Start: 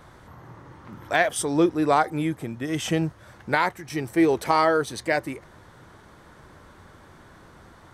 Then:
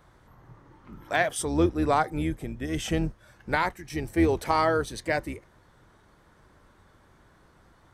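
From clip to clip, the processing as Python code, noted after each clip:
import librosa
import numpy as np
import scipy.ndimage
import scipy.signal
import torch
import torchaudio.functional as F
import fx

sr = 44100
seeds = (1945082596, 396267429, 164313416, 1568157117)

y = fx.octave_divider(x, sr, octaves=2, level_db=-3.0)
y = fx.noise_reduce_blind(y, sr, reduce_db=6)
y = y * librosa.db_to_amplitude(-3.5)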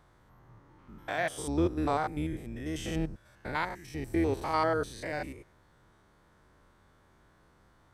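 y = fx.spec_steps(x, sr, hold_ms=100)
y = y * librosa.db_to_amplitude(-3.5)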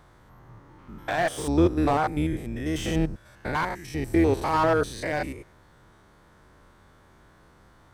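y = fx.slew_limit(x, sr, full_power_hz=49.0)
y = y * librosa.db_to_amplitude(7.5)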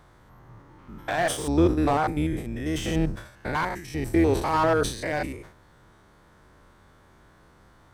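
y = fx.sustainer(x, sr, db_per_s=110.0)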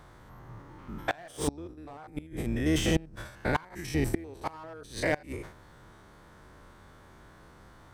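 y = fx.gate_flip(x, sr, shuts_db=-16.0, range_db=-25)
y = y * librosa.db_to_amplitude(2.0)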